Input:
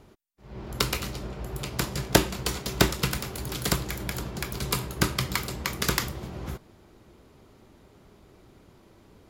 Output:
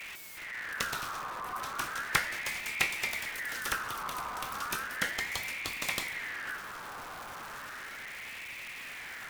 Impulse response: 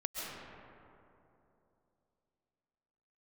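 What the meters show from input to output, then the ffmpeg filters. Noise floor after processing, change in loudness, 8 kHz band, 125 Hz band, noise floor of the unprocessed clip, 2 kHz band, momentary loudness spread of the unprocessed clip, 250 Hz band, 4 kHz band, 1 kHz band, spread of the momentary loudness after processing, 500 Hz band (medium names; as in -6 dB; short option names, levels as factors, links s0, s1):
-44 dBFS, -6.5 dB, -7.0 dB, -21.0 dB, -56 dBFS, +1.5 dB, 14 LU, -18.0 dB, -6.5 dB, -1.5 dB, 12 LU, -14.0 dB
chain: -filter_complex "[0:a]aeval=exprs='val(0)+0.5*0.0355*sgn(val(0))':c=same,asplit=2[s0][s1];[1:a]atrim=start_sample=2205,lowpass=2300[s2];[s1][s2]afir=irnorm=-1:irlink=0,volume=0.237[s3];[s0][s3]amix=inputs=2:normalize=0,aeval=exprs='val(0)*sin(2*PI*1700*n/s+1700*0.35/0.35*sin(2*PI*0.35*n/s))':c=same,volume=0.422"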